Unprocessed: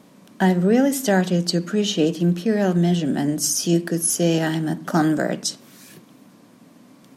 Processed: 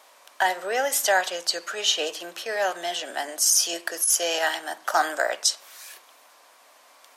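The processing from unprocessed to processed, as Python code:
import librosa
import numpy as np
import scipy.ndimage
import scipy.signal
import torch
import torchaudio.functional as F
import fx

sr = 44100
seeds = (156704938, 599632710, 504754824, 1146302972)

y = scipy.signal.sosfilt(scipy.signal.butter(4, 660.0, 'highpass', fs=sr, output='sos'), x)
y = fx.over_compress(y, sr, threshold_db=-22.0, ratio=-0.5)
y = y * 10.0 ** (3.5 / 20.0)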